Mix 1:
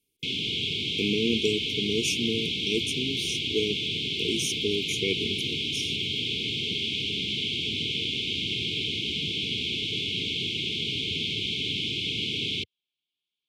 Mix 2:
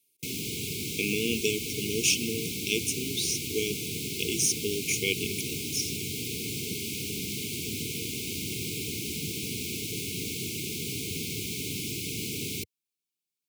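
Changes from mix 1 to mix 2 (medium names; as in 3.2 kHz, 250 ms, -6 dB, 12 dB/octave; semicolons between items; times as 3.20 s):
speech: add tilt EQ +2.5 dB/octave; background: remove resonant low-pass 3.3 kHz, resonance Q 6.1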